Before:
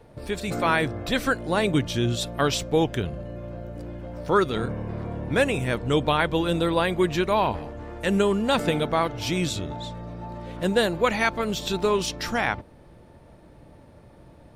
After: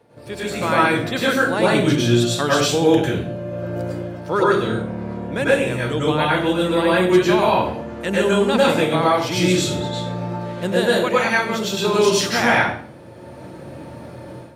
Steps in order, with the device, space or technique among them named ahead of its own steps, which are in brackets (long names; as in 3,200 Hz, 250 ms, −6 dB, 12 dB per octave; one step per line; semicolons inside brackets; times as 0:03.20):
far laptop microphone (convolution reverb RT60 0.50 s, pre-delay 94 ms, DRR −6.5 dB; high-pass filter 140 Hz 12 dB per octave; automatic gain control gain up to 11.5 dB)
level −3 dB